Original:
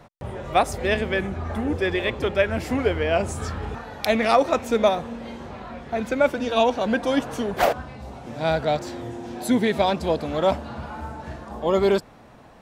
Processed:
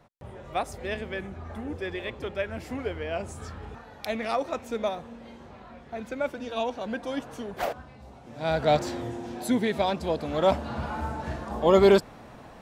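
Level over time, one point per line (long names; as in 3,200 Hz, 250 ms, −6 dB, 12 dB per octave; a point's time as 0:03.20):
0:08.29 −10 dB
0:08.75 +2 dB
0:09.60 −5 dB
0:10.13 −5 dB
0:10.82 +2 dB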